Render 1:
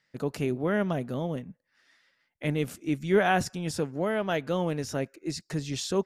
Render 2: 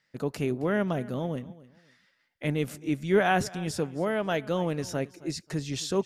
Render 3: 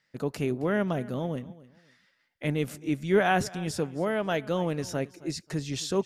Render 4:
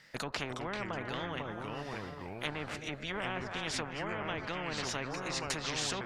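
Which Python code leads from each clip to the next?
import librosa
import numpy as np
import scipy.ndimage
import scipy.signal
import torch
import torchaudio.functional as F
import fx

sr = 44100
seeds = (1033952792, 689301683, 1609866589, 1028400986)

y1 = fx.echo_feedback(x, sr, ms=268, feedback_pct=24, wet_db=-19.5)
y2 = y1
y3 = fx.env_lowpass_down(y2, sr, base_hz=830.0, full_db=-23.0)
y3 = fx.echo_pitch(y3, sr, ms=325, semitones=-3, count=2, db_per_echo=-6.0)
y3 = fx.spectral_comp(y3, sr, ratio=4.0)
y3 = y3 * 10.0 ** (-4.0 / 20.0)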